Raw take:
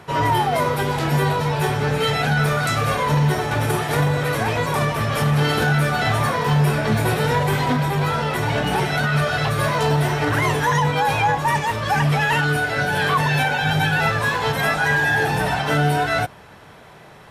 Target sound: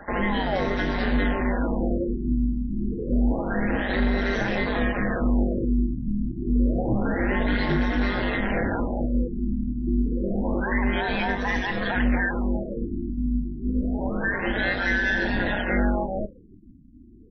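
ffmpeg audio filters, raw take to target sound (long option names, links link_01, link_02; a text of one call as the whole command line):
ffmpeg -i in.wav -filter_complex "[0:a]afftdn=noise_reduction=14:noise_floor=-41,superequalizer=8b=1.78:11b=3.16:14b=0.562:16b=2.82,aeval=exprs='val(0)*sin(2*PI*96*n/s)':channel_layout=same,acrossover=split=480|2800[link_01][link_02][link_03];[link_02]acompressor=threshold=-34dB:ratio=4[link_04];[link_01][link_04][link_03]amix=inputs=3:normalize=0,asoftclip=type=tanh:threshold=-15dB,asplit=2[link_05][link_06];[link_06]alimiter=level_in=3.5dB:limit=-24dB:level=0:latency=1:release=340,volume=-3.5dB,volume=-1.5dB[link_07];[link_05][link_07]amix=inputs=2:normalize=0,asplit=2[link_08][link_09];[link_09]adelay=40,volume=-14dB[link_10];[link_08][link_10]amix=inputs=2:normalize=0,afftfilt=real='re*lt(b*sr/1024,320*pow(6300/320,0.5+0.5*sin(2*PI*0.28*pts/sr)))':imag='im*lt(b*sr/1024,320*pow(6300/320,0.5+0.5*sin(2*PI*0.28*pts/sr)))':win_size=1024:overlap=0.75" out.wav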